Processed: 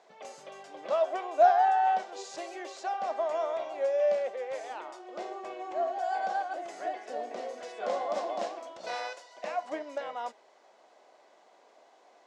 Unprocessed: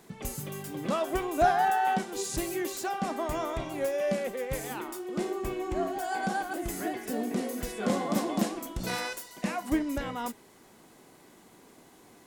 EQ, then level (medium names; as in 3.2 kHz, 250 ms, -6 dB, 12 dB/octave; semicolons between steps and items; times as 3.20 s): resonant high-pass 620 Hz, resonance Q 3.5; low-pass 6.2 kHz 24 dB/octave; -6.0 dB